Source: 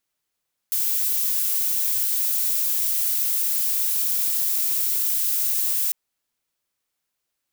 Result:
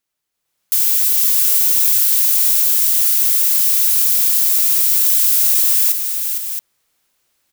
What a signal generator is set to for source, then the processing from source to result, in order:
noise violet, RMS -22.5 dBFS 5.20 s
on a send: tapped delay 0.459/0.671 s -7.5/-10.5 dB; on the sum: AGC gain up to 13 dB

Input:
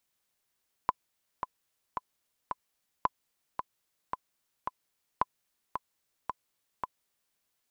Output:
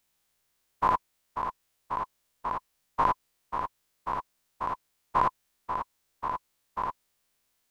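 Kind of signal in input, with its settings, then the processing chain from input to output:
metronome 111 bpm, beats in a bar 4, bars 3, 1010 Hz, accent 7.5 dB -11.5 dBFS
spectral dilation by 0.12 s; low shelf 61 Hz +7.5 dB

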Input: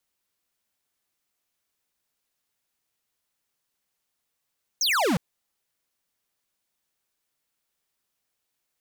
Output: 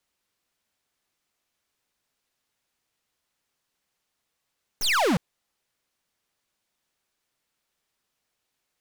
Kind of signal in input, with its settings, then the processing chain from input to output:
laser zap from 6700 Hz, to 150 Hz, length 0.36 s square, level -22.5 dB
tracing distortion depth 0.089 ms; high shelf 9100 Hz -9.5 dB; in parallel at -5 dB: soft clip -34.5 dBFS

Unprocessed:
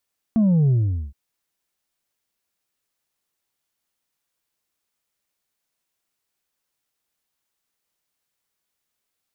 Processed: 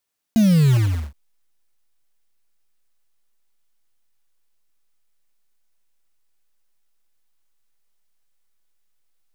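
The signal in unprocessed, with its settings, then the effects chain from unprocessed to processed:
sub drop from 230 Hz, over 0.77 s, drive 3 dB, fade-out 0.43 s, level -14.5 dB
block floating point 3-bit; in parallel at -10 dB: backlash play -27.5 dBFS

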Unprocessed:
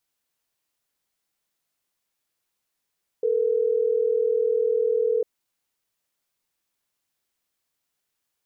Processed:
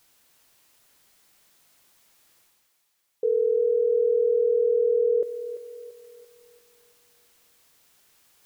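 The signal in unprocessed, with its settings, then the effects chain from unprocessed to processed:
call progress tone ringback tone, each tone -22 dBFS
reverse; upward compressor, threshold -46 dBFS; reverse; thinning echo 0.34 s, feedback 63%, high-pass 530 Hz, level -9.5 dB

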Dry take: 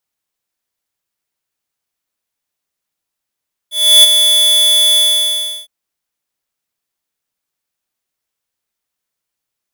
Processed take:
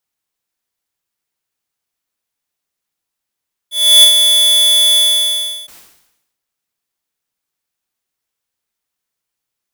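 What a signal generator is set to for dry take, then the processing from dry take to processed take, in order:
ADSR square 3440 Hz, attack 0.324 s, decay 21 ms, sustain -6.5 dB, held 1.26 s, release 0.701 s -3.5 dBFS
notch 600 Hz, Q 16; sustainer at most 66 dB/s

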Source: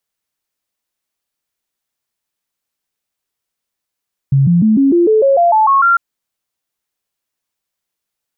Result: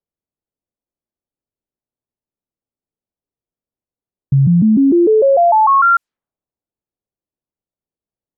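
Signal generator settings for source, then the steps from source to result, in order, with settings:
stepped sine 137 Hz up, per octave 3, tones 11, 0.15 s, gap 0.00 s -7 dBFS
low-pass opened by the level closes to 500 Hz, open at -11 dBFS

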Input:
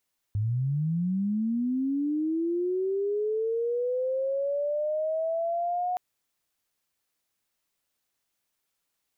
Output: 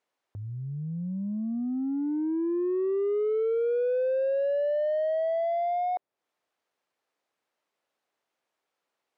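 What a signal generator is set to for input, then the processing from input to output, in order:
chirp linear 100 Hz -> 730 Hz -24 dBFS -> -25.5 dBFS 5.62 s
band-pass 510 Hz, Q 1; in parallel at -4 dB: soft clip -34 dBFS; on the sum: mismatched tape noise reduction encoder only

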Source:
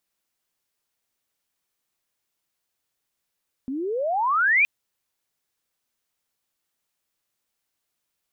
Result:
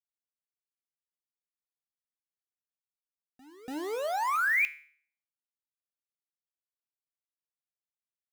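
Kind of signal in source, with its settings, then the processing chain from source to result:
chirp logarithmic 250 Hz -> 2500 Hz -26.5 dBFS -> -14.5 dBFS 0.97 s
sample gate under -29 dBFS; resonator 150 Hz, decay 0.51 s, harmonics all, mix 60%; pre-echo 0.288 s -17.5 dB

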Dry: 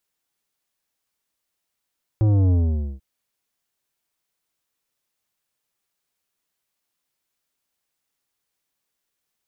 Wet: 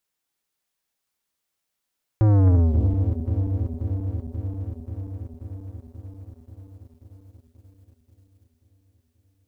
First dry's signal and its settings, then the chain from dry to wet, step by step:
sub drop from 110 Hz, over 0.79 s, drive 11 dB, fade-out 0.49 s, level -15.5 dB
regenerating reverse delay 0.267 s, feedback 83%, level -9 dB; sample leveller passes 1

